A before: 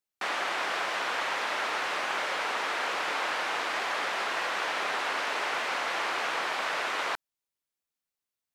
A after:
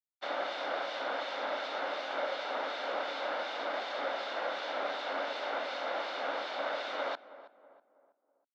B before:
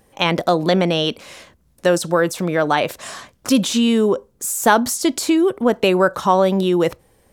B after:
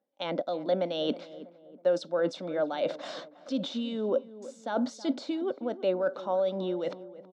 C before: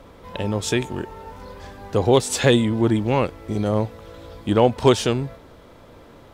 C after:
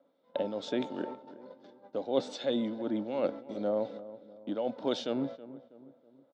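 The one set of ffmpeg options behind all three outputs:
-filter_complex "[0:a]agate=range=-22dB:threshold=-35dB:ratio=16:detection=peak,equalizer=f=2.6k:w=1.1:g=-6.5,aecho=1:1:1.4:0.32,areverse,acompressor=threshold=-25dB:ratio=12,areverse,acrossover=split=2300[a][b];[a]aeval=exprs='val(0)*(1-0.5/2+0.5/2*cos(2*PI*2.7*n/s))':c=same[c];[b]aeval=exprs='val(0)*(1-0.5/2-0.5/2*cos(2*PI*2.7*n/s))':c=same[d];[c][d]amix=inputs=2:normalize=0,highpass=f=200:w=0.5412,highpass=f=200:w=1.3066,equalizer=f=280:t=q:w=4:g=10,equalizer=f=560:t=q:w=4:g=10,equalizer=f=3.6k:t=q:w=4:g=7,lowpass=f=4.8k:w=0.5412,lowpass=f=4.8k:w=1.3066,asplit=2[e][f];[f]adelay=323,lowpass=f=1.2k:p=1,volume=-15dB,asplit=2[g][h];[h]adelay=323,lowpass=f=1.2k:p=1,volume=0.47,asplit=2[i][j];[j]adelay=323,lowpass=f=1.2k:p=1,volume=0.47,asplit=2[k][l];[l]adelay=323,lowpass=f=1.2k:p=1,volume=0.47[m];[g][i][k][m]amix=inputs=4:normalize=0[n];[e][n]amix=inputs=2:normalize=0,volume=-3.5dB"

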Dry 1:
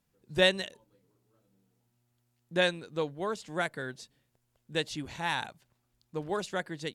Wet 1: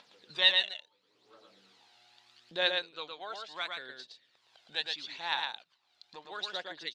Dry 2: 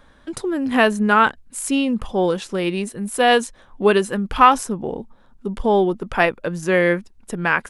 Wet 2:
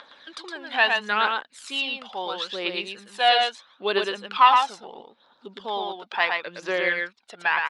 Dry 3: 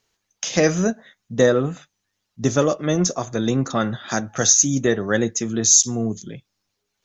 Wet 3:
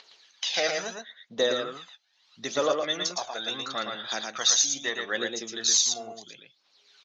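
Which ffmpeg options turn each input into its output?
-filter_complex "[0:a]highpass=640,acompressor=mode=upward:threshold=-40dB:ratio=2.5,aphaser=in_gain=1:out_gain=1:delay=1.5:decay=0.54:speed=0.75:type=triangular,lowpass=f=4k:t=q:w=3.2,asplit=2[a][b];[b]aecho=0:1:114:0.631[c];[a][c]amix=inputs=2:normalize=0,volume=-6.5dB"

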